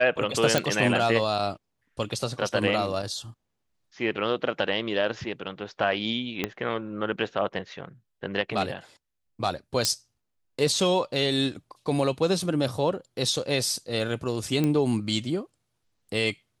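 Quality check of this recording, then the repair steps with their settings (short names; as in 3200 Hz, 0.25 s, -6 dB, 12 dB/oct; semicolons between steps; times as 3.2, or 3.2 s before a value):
0.58 pop
6.44 pop -11 dBFS
9.85 pop -7 dBFS
14.64 pop -13 dBFS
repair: de-click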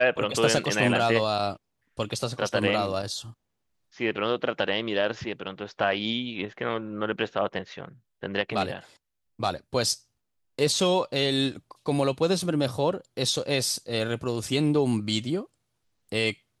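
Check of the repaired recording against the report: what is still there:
6.44 pop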